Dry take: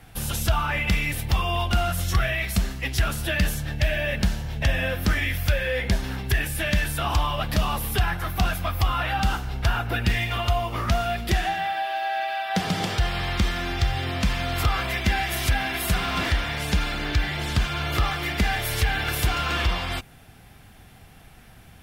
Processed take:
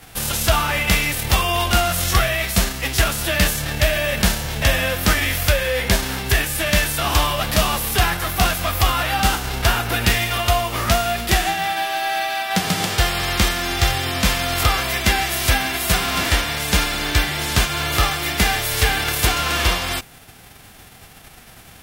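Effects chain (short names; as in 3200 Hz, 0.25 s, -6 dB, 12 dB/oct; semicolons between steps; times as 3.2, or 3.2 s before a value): spectral whitening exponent 0.6; gain +4.5 dB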